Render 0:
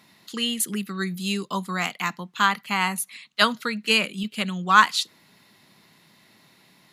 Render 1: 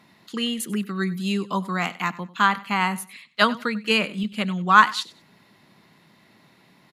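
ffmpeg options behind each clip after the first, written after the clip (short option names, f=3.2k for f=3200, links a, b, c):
-af "highshelf=f=3.1k:g=-10.5,aecho=1:1:95|190:0.112|0.0281,volume=3dB"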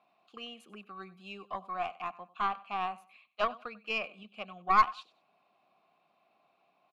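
-filter_complex "[0:a]asplit=3[a][b][c];[a]bandpass=f=730:t=q:w=8,volume=0dB[d];[b]bandpass=f=1.09k:t=q:w=8,volume=-6dB[e];[c]bandpass=f=2.44k:t=q:w=8,volume=-9dB[f];[d][e][f]amix=inputs=3:normalize=0,aeval=exprs='0.282*(cos(1*acos(clip(val(0)/0.282,-1,1)))-cos(1*PI/2))+0.0282*(cos(4*acos(clip(val(0)/0.282,-1,1)))-cos(4*PI/2))+0.00355*(cos(8*acos(clip(val(0)/0.282,-1,1)))-cos(8*PI/2))':c=same,volume=-1dB"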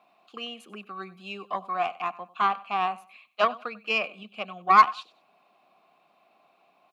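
-af "highpass=160,volume=7.5dB"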